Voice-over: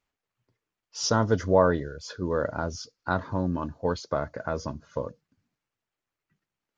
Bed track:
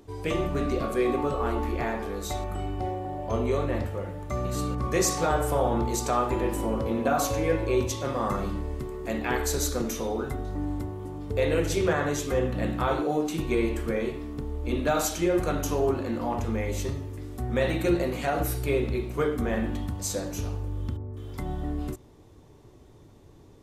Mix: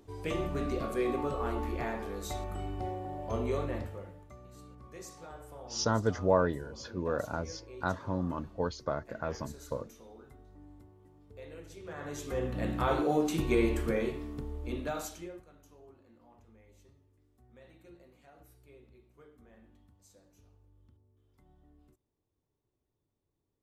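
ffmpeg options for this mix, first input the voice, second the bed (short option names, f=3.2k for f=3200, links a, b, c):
-filter_complex "[0:a]adelay=4750,volume=-5.5dB[a];[1:a]volume=15.5dB,afade=t=out:st=3.58:d=0.79:silence=0.141254,afade=t=in:st=11.84:d=1.27:silence=0.0841395,afade=t=out:st=13.75:d=1.69:silence=0.0316228[b];[a][b]amix=inputs=2:normalize=0"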